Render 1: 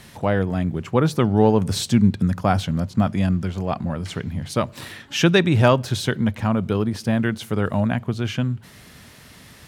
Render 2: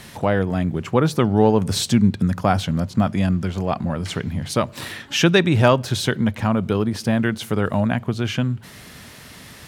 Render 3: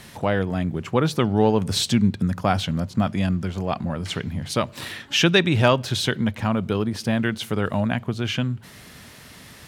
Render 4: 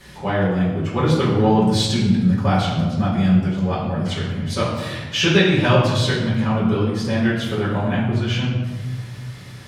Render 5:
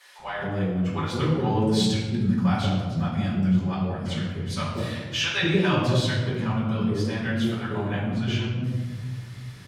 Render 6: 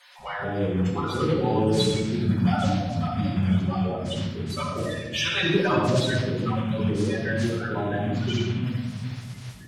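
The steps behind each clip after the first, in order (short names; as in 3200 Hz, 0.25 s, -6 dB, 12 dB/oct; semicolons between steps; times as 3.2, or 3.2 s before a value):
low shelf 160 Hz -3 dB; in parallel at -2.5 dB: compressor, threshold -27 dBFS, peak gain reduction 15.5 dB
dynamic EQ 3200 Hz, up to +5 dB, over -36 dBFS, Q 0.95; gain -3 dB
reverb RT60 1.4 s, pre-delay 5 ms, DRR -10 dB; gain -10 dB
bands offset in time highs, lows 0.19 s, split 620 Hz; gain -5.5 dB
bin magnitudes rounded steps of 30 dB; digital reverb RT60 0.8 s, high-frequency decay 0.65×, pre-delay 15 ms, DRR 4.5 dB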